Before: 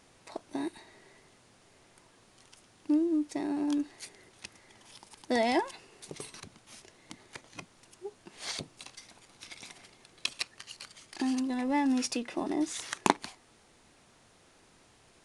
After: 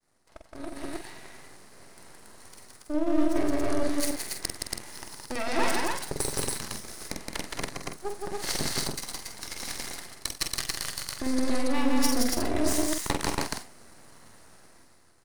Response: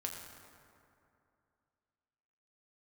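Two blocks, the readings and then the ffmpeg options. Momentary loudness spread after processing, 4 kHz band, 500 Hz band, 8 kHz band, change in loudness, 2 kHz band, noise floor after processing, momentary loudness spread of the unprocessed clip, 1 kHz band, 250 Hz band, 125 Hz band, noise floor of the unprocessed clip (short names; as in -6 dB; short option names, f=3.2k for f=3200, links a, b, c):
15 LU, +7.0 dB, +5.0 dB, +11.0 dB, +2.0 dB, +5.0 dB, -57 dBFS, 21 LU, +2.0 dB, +2.0 dB, +12.5 dB, -62 dBFS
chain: -filter_complex "[0:a]equalizer=f=6.6k:t=o:w=1.2:g=-9.5,areverse,acompressor=threshold=-42dB:ratio=8,areverse,asuperstop=centerf=2900:order=12:qfactor=1.6,agate=range=-33dB:threshold=-59dB:ratio=3:detection=peak,aeval=exprs='max(val(0),0)':c=same,asplit=2[a][b];[b]aecho=0:1:46.65|169.1|279.9:0.447|0.794|0.891[c];[a][c]amix=inputs=2:normalize=0,aeval=exprs='0.0422*(cos(1*acos(clip(val(0)/0.0422,-1,1)))-cos(1*PI/2))+0.00473*(cos(3*acos(clip(val(0)/0.0422,-1,1)))-cos(3*PI/2))+0.00133*(cos(5*acos(clip(val(0)/0.0422,-1,1)))-cos(5*PI/2))+0.00376*(cos(6*acos(clip(val(0)/0.0422,-1,1)))-cos(6*PI/2))+0.00211*(cos(7*acos(clip(val(0)/0.0422,-1,1)))-cos(7*PI/2))':c=same,dynaudnorm=f=150:g=13:m=15.5dB,highshelf=f=3k:g=9.5,asplit=2[d][e];[e]adelay=47,volume=-7.5dB[f];[d][f]amix=inputs=2:normalize=0"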